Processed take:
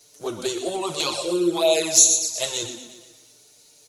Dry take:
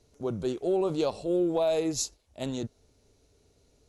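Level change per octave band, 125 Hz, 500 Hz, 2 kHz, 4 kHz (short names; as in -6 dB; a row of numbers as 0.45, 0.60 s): -3.5, +3.5, +14.0, +16.0 dB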